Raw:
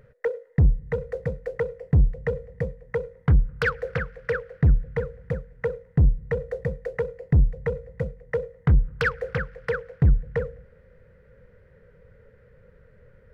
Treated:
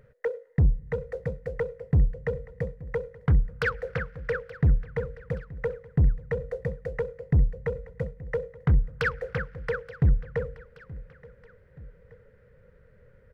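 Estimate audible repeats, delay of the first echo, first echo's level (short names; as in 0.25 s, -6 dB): 2, 0.876 s, -20.0 dB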